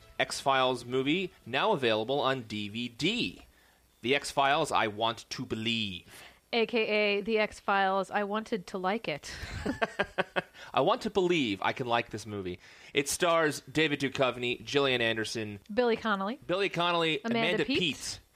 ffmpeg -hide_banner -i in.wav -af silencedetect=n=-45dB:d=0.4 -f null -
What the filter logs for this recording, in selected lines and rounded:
silence_start: 3.43
silence_end: 4.03 | silence_duration: 0.60